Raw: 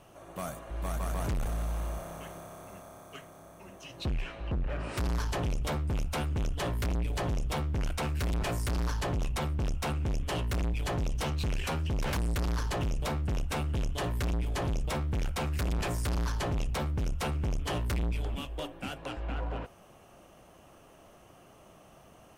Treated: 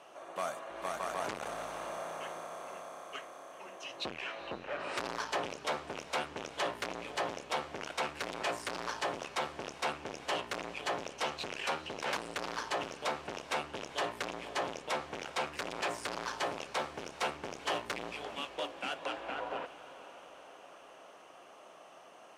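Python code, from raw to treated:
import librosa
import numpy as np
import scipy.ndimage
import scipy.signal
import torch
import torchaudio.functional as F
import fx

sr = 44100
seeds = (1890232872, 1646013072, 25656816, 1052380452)

p1 = scipy.signal.sosfilt(scipy.signal.butter(2, 500.0, 'highpass', fs=sr, output='sos'), x)
p2 = fx.rider(p1, sr, range_db=5, speed_s=2.0)
p3 = p1 + F.gain(torch.from_numpy(p2), -3.0).numpy()
p4 = fx.quant_float(p3, sr, bits=2, at=(16.24, 18.14))
p5 = fx.air_absorb(p4, sr, metres=60.0)
p6 = p5 + fx.echo_diffused(p5, sr, ms=462, feedback_pct=62, wet_db=-15, dry=0)
y = F.gain(torch.from_numpy(p6), -2.0).numpy()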